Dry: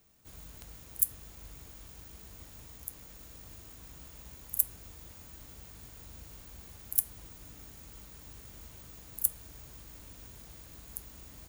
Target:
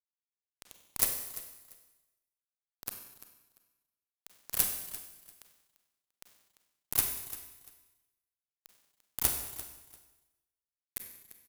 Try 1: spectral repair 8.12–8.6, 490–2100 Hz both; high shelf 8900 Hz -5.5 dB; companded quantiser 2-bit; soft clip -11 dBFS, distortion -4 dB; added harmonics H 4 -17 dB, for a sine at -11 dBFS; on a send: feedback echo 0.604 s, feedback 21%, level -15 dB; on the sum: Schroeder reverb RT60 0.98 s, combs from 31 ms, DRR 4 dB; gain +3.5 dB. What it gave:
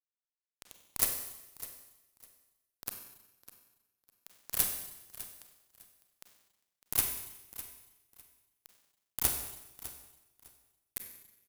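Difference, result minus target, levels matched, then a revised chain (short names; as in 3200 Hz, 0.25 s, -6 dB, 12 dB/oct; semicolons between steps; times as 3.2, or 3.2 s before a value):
echo 0.26 s late; soft clip: distortion +13 dB
spectral repair 8.12–8.6, 490–2100 Hz both; high shelf 8900 Hz -5.5 dB; companded quantiser 2-bit; soft clip -1.5 dBFS, distortion -17 dB; added harmonics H 4 -17 dB, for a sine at -11 dBFS; on a send: feedback echo 0.344 s, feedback 21%, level -15 dB; on the sum: Schroeder reverb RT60 0.98 s, combs from 31 ms, DRR 4 dB; gain +3.5 dB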